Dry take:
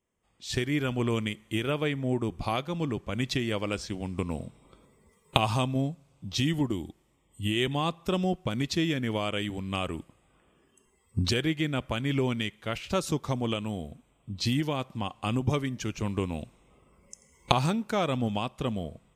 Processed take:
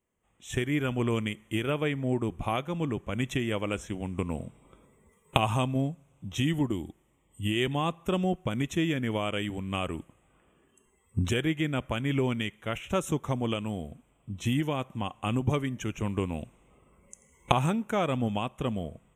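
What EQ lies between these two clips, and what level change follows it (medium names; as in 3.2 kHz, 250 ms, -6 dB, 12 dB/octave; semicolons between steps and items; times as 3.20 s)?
Butterworth band-stop 4.6 kHz, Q 1.5; 0.0 dB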